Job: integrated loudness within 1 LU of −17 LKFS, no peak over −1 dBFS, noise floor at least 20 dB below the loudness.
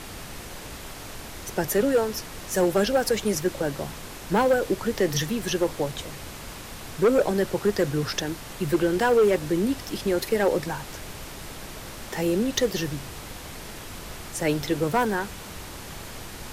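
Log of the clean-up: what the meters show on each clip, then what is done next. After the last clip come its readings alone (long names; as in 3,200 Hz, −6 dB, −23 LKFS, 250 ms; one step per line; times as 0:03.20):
share of clipped samples 0.7%; peaks flattened at −14.5 dBFS; background noise floor −40 dBFS; target noise floor −45 dBFS; integrated loudness −25.0 LKFS; sample peak −14.5 dBFS; target loudness −17.0 LKFS
→ clipped peaks rebuilt −14.5 dBFS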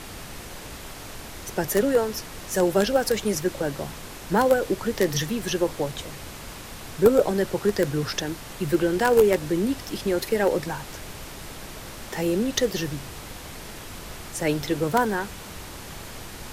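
share of clipped samples 0.0%; background noise floor −40 dBFS; target noise floor −45 dBFS
→ noise reduction from a noise print 6 dB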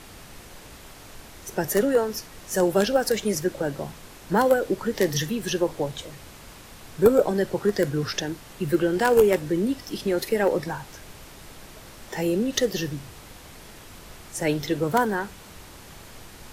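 background noise floor −46 dBFS; integrated loudness −24.5 LKFS; sample peak −5.5 dBFS; target loudness −17.0 LKFS
→ level +7.5 dB
brickwall limiter −1 dBFS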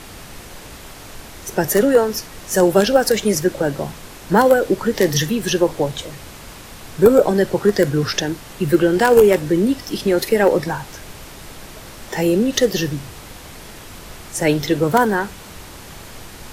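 integrated loudness −17.5 LKFS; sample peak −1.0 dBFS; background noise floor −38 dBFS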